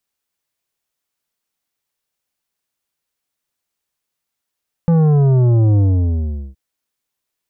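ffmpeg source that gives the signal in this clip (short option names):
-f lavfi -i "aevalsrc='0.299*clip((1.67-t)/0.77,0,1)*tanh(3.16*sin(2*PI*170*1.67/log(65/170)*(exp(log(65/170)*t/1.67)-1)))/tanh(3.16)':d=1.67:s=44100"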